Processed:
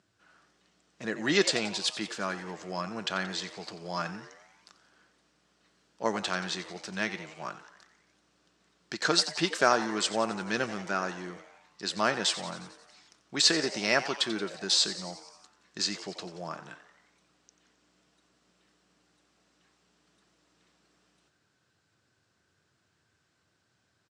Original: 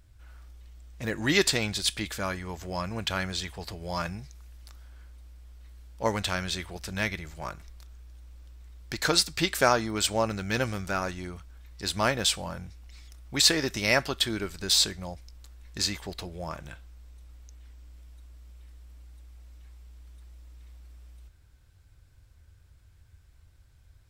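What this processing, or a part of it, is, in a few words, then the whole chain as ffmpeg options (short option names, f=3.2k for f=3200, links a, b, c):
television speaker: -filter_complex "[0:a]highpass=f=180:w=0.5412,highpass=f=180:w=1.3066,equalizer=f=260:t=q:w=4:g=-5,equalizer=f=530:t=q:w=4:g=-5,equalizer=f=880:t=q:w=4:g=-4,equalizer=f=2.2k:t=q:w=4:g=-6,equalizer=f=3.5k:t=q:w=4:g=-3,lowpass=f=7.9k:w=0.5412,lowpass=f=7.9k:w=1.3066,highshelf=f=6.2k:g=-5.5,asplit=8[a][b][c][d][e][f][g][h];[b]adelay=89,afreqshift=140,volume=-14dB[i];[c]adelay=178,afreqshift=280,volume=-18.2dB[j];[d]adelay=267,afreqshift=420,volume=-22.3dB[k];[e]adelay=356,afreqshift=560,volume=-26.5dB[l];[f]adelay=445,afreqshift=700,volume=-30.6dB[m];[g]adelay=534,afreqshift=840,volume=-34.8dB[n];[h]adelay=623,afreqshift=980,volume=-38.9dB[o];[a][i][j][k][l][m][n][o]amix=inputs=8:normalize=0,volume=1dB"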